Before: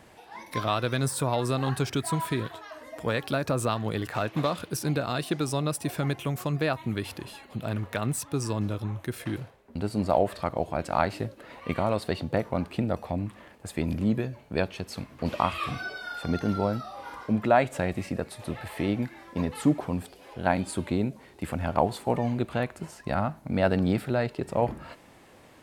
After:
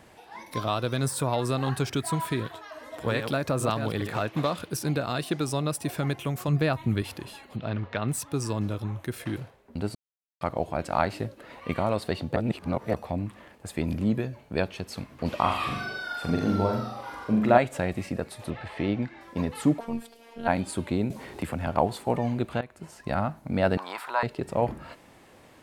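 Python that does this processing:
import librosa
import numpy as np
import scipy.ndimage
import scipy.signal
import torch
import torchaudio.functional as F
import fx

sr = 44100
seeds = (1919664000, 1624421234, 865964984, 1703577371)

y = fx.peak_eq(x, sr, hz=1900.0, db=-6.0, octaves=0.93, at=(0.52, 0.97))
y = fx.reverse_delay(y, sr, ms=422, wet_db=-7.0, at=(2.33, 4.2))
y = fx.low_shelf(y, sr, hz=170.0, db=9.0, at=(6.48, 7.02))
y = fx.lowpass(y, sr, hz=4800.0, slope=24, at=(7.56, 8.08))
y = fx.room_flutter(y, sr, wall_m=7.2, rt60_s=0.59, at=(15.4, 17.58))
y = fx.lowpass(y, sr, hz=4800.0, slope=12, at=(18.5, 19.21))
y = fx.robotise(y, sr, hz=231.0, at=(19.79, 20.48))
y = fx.band_squash(y, sr, depth_pct=70, at=(21.1, 21.67))
y = fx.highpass_res(y, sr, hz=1000.0, q=12.0, at=(23.77, 24.23))
y = fx.edit(y, sr, fx.silence(start_s=9.95, length_s=0.46),
    fx.reverse_span(start_s=12.36, length_s=0.58),
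    fx.fade_in_from(start_s=22.61, length_s=0.44, floor_db=-16.0), tone=tone)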